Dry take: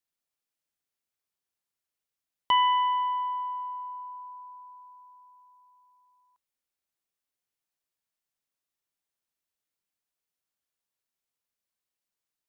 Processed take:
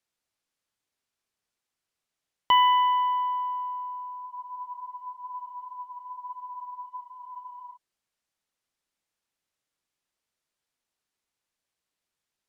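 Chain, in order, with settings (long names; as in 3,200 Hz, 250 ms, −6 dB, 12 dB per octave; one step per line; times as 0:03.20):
frozen spectrum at 0:04.27, 3.48 s
linearly interpolated sample-rate reduction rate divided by 2×
level +3 dB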